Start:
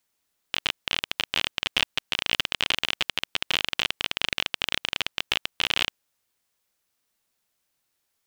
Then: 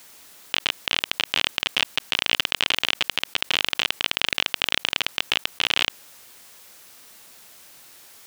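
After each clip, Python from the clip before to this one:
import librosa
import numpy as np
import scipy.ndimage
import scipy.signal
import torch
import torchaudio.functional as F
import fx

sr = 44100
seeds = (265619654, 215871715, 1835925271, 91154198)

y = fx.low_shelf(x, sr, hz=110.0, db=-9.0)
y = fx.env_flatten(y, sr, amount_pct=50)
y = y * 10.0 ** (1.0 / 20.0)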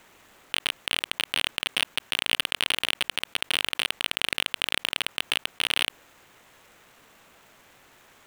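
y = scipy.ndimage.median_filter(x, 9, mode='constant')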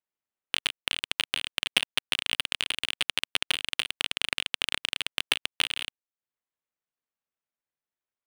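y = fx.transient(x, sr, attack_db=10, sustain_db=-7)
y = fx.upward_expand(y, sr, threshold_db=-40.0, expansion=2.5)
y = y * 10.0 ** (-5.0 / 20.0)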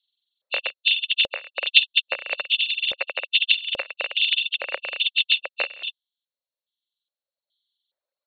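y = fx.freq_compress(x, sr, knee_hz=2600.0, ratio=4.0)
y = fx.filter_lfo_highpass(y, sr, shape='square', hz=1.2, low_hz=550.0, high_hz=3300.0, q=7.1)
y = fx.dereverb_blind(y, sr, rt60_s=1.8)
y = y * 10.0 ** (1.5 / 20.0)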